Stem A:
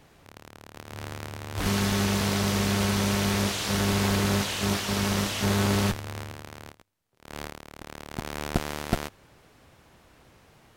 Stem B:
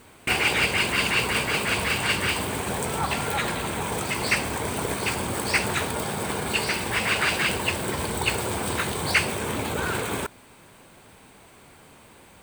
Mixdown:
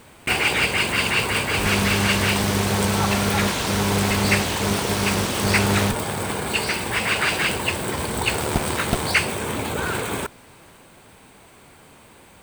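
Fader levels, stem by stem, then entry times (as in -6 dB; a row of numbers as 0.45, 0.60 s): +2.5, +2.0 dB; 0.00, 0.00 s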